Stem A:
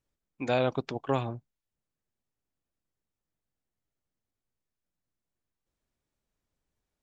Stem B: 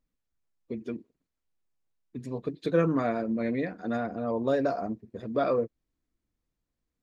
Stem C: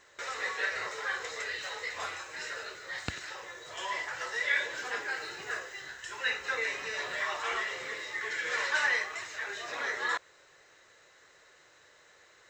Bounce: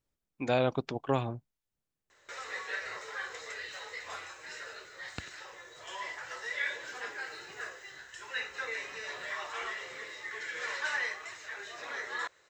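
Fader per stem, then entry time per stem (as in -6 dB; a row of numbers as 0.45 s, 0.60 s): -1.0 dB, mute, -5.0 dB; 0.00 s, mute, 2.10 s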